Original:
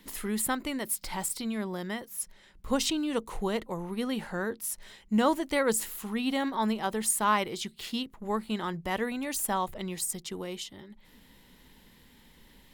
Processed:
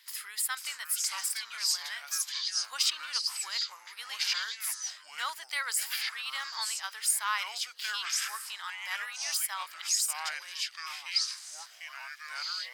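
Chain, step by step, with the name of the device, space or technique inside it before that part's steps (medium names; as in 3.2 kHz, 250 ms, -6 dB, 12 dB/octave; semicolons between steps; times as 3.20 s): bass shelf 200 Hz +11 dB; ever faster or slower copies 463 ms, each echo -5 st, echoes 3; headphones lying on a table (high-pass 1.3 kHz 24 dB/octave; peaking EQ 4.9 kHz +11 dB 0.23 oct)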